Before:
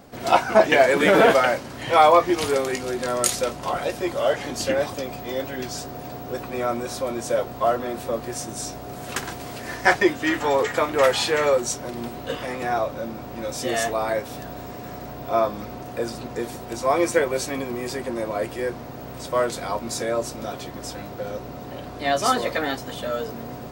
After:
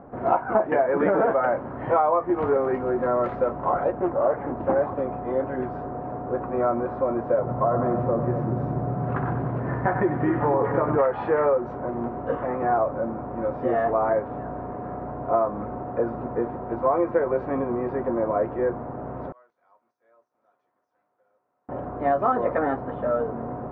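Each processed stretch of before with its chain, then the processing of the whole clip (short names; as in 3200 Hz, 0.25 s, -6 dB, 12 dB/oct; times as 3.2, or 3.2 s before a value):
3.92–4.76 air absorption 350 m + Doppler distortion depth 0.48 ms
7.39–10.98 compressor 2:1, threshold -23 dBFS + bell 140 Hz +12.5 dB 1.1 oct + split-band echo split 530 Hz, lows 0.239 s, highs 95 ms, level -8 dB
19.32–21.69 band-pass 6100 Hz, Q 9.7 + compressor 10:1, threshold -46 dBFS
whole clip: LPF 1300 Hz 24 dB/oct; low shelf 360 Hz -4 dB; compressor 12:1, threshold -22 dBFS; gain +5 dB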